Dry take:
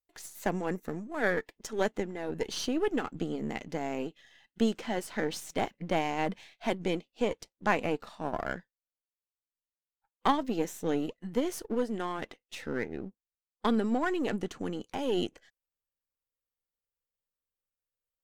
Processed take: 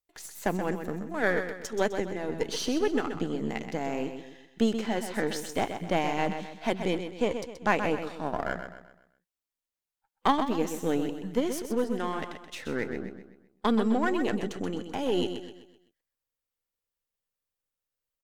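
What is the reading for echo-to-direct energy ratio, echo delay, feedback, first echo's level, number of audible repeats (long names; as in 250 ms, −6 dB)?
−7.5 dB, 128 ms, 41%, −8.5 dB, 4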